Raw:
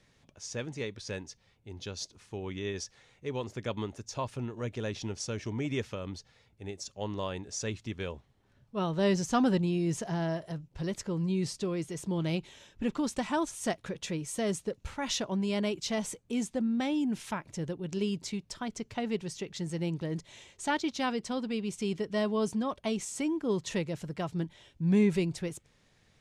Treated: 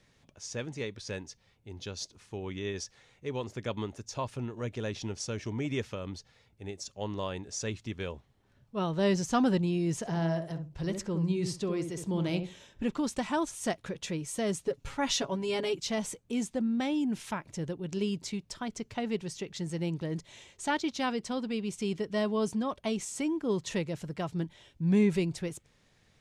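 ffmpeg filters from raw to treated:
-filter_complex "[0:a]asettb=1/sr,asplit=3[a][b][c];[a]atrim=end=9.964[d];[b]atrim=start=9.96:end=12.85,asetpts=PTS-STARTPTS,afade=t=in:d=0.004:c=qsin,afade=t=out:st=2.886:d=0.004:c=qsin,asplit=2[e][f];[f]adelay=66,lowpass=f=810:p=1,volume=-5dB,asplit=2[g][h];[h]adelay=66,lowpass=f=810:p=1,volume=0.21,asplit=2[i][j];[j]adelay=66,lowpass=f=810:p=1,volume=0.21[k];[e][g][i][k]amix=inputs=4:normalize=0,atrim=end_sample=127449[l];[c]atrim=start=12.846[m];[d][l]acrossfade=d=0.004:c1=hsin:c2=qsin[n];[n][m]acrossfade=d=0.004:c1=qsin:c2=hsin,asettb=1/sr,asplit=3[o][p][q];[o]atrim=end=14.654[r];[p]atrim=start=14.65:end=15.78,asetpts=PTS-STARTPTS,afade=t=in:d=0.004:c=qsin,afade=t=out:st=1.126:d=0.004:c=qsin,aecho=1:1:7.2:0.8,atrim=end_sample=49833[s];[q]atrim=start=15.776[t];[r][s]acrossfade=d=0.004:c1=hsin:c2=qsin[u];[u][t]acrossfade=d=0.004:c1=qsin:c2=hsin"

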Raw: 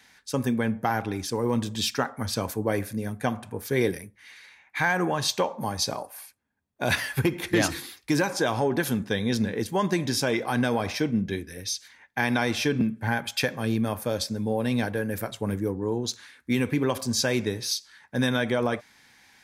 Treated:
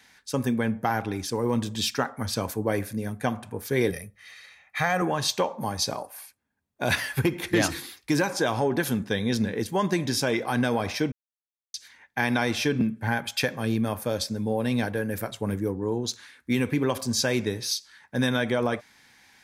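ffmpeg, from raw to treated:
-filter_complex "[0:a]asettb=1/sr,asplit=3[a][b][c];[a]atrim=end=3.904[d];[b]atrim=start=3.9:end=5.02,asetpts=PTS-STARTPTS,afade=t=in:d=0.004:c=qsin,afade=t=out:st=1.116:d=0.004:c=qsin,aecho=1:1:1.6:0.65,atrim=end_sample=49392[e];[c]atrim=start=5.016[f];[d][e]acrossfade=d=0.004:c1=hsin:c2=qsin[g];[g][f]acrossfade=d=0.004:c1=qsin:c2=hsin,asplit=3[h][i][j];[h]atrim=end=11.12,asetpts=PTS-STARTPTS,afade=t=out:st=11.116:d=0.004:c=hsin[k];[i]atrim=start=11.12:end=11.74,asetpts=PTS-STARTPTS,volume=0[l];[j]atrim=start=11.74,asetpts=PTS-STARTPTS,afade=t=in:d=0.004:c=hsin[m];[k][l][m]concat=n=3:v=0:a=1"

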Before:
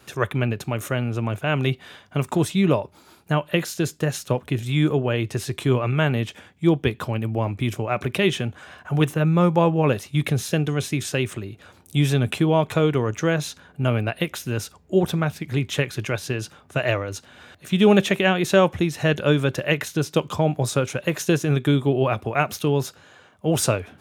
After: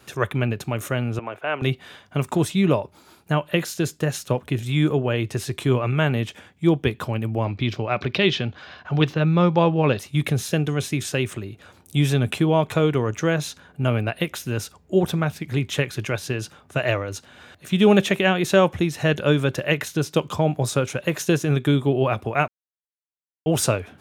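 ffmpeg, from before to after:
-filter_complex "[0:a]asettb=1/sr,asplit=3[a][b][c];[a]atrim=end=1.194[d];[b]atrim=start=1.19:end=1.62,asetpts=PTS-STARTPTS,afade=t=in:d=0.004:c=qsin,afade=t=out:st=0.426:d=0.004:c=qsin,acrossover=split=350 3000:gain=0.0891 1 0.141[e][f][g];[e][f][g]amix=inputs=3:normalize=0[h];[c]atrim=start=1.616[i];[d][h]acrossfade=d=0.004:c1=hsin:c2=qsin[j];[j][i]acrossfade=d=0.004:c1=qsin:c2=hsin,asettb=1/sr,asplit=3[k][l][m];[k]atrim=end=7.444[n];[l]atrim=start=7.44:end=9.99,asetpts=PTS-STARTPTS,afade=t=in:d=0.004:c=qsin,afade=t=out:st=2.546:d=0.004:c=qsin,highshelf=f=6.6k:t=q:w=3:g=-14[o];[m]atrim=start=9.986[p];[n][o]acrossfade=d=0.004:c1=hsin:c2=qsin[q];[q][p]acrossfade=d=0.004:c1=qsin:c2=hsin,asplit=3[r][s][t];[r]atrim=end=22.48,asetpts=PTS-STARTPTS,afade=t=out:st=22.476:d=0.004:c=hsin[u];[s]atrim=start=22.48:end=23.46,asetpts=PTS-STARTPTS,volume=0[v];[t]atrim=start=23.46,asetpts=PTS-STARTPTS,afade=t=in:d=0.004:c=hsin[w];[u][v][w]concat=n=3:v=0:a=1"

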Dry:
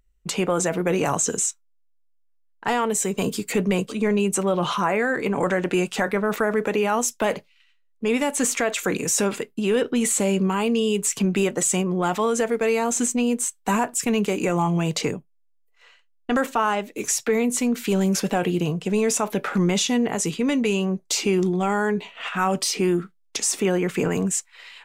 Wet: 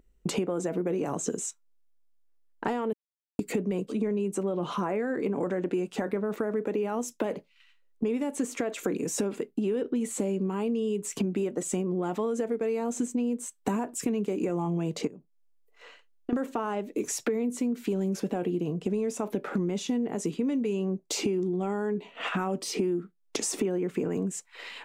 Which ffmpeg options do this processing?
-filter_complex "[0:a]asettb=1/sr,asplit=3[a][b][c];[a]atrim=end=15.074[d];[b]atrim=start=15.07:end=16.33,asetpts=PTS-STARTPTS,afade=t=in:d=0.004:c=qsin,afade=t=out:st=1.256:d=0.004:c=qsin,acompressor=threshold=-41dB:ratio=4:attack=3.2:release=140:knee=1:detection=peak[e];[c]atrim=start=16.326[f];[d][e]acrossfade=d=0.004:c1=hsin:c2=qsin[g];[g][f]acrossfade=d=0.004:c1=qsin:c2=hsin,asplit=3[h][i][j];[h]atrim=end=2.93,asetpts=PTS-STARTPTS,afade=t=out:st=2.926:d=0.004:c=hsin[k];[i]atrim=start=2.93:end=3.39,asetpts=PTS-STARTPTS,volume=0[l];[j]atrim=start=3.39,asetpts=PTS-STARTPTS,afade=t=in:d=0.004:c=hsin[m];[k][l][m]concat=n=3:v=0:a=1,equalizer=f=310:w=0.55:g=14.5,acompressor=threshold=-28dB:ratio=6"

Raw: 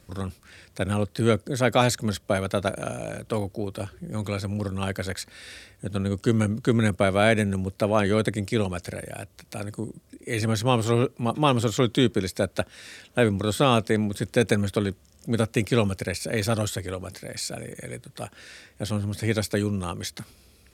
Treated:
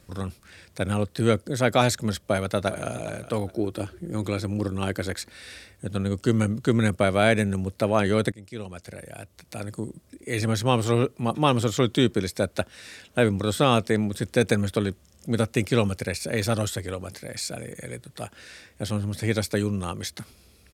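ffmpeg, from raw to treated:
-filter_complex "[0:a]asplit=2[a][b];[b]afade=t=in:st=2.23:d=0.01,afade=t=out:st=2.88:d=0.01,aecho=0:1:410|820|1230:0.177828|0.0533484|0.0160045[c];[a][c]amix=inputs=2:normalize=0,asettb=1/sr,asplit=3[d][e][f];[d]atrim=end=3.484[g];[e]atrim=start=3.48:end=5.3,asetpts=PTS-STARTPTS,afade=t=in:d=0.004:c=qsin,afade=t=out:st=1.816:d=0.004:c=qsin,equalizer=f=330:t=o:w=0.43:g=9[h];[f]atrim=start=5.296[i];[g][h]acrossfade=d=0.004:c1=hsin:c2=qsin[j];[j][i]acrossfade=d=0.004:c1=qsin:c2=hsin,asplit=2[k][l];[k]atrim=end=8.32,asetpts=PTS-STARTPTS,afade=t=out:st=8.316:d=0.004:c=hsin:silence=0.1[m];[l]atrim=start=8.32,asetpts=PTS-STARTPTS,afade=t=in:d=1.43:silence=0.1[n];[m][n]concat=n=2:v=0:a=1"

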